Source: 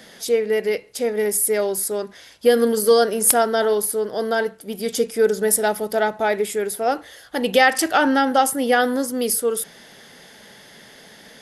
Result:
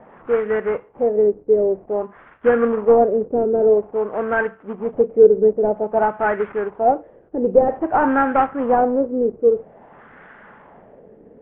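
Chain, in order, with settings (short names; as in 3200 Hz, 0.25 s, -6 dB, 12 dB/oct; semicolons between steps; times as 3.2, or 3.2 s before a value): CVSD 16 kbps; LFO low-pass sine 0.51 Hz 420–1500 Hz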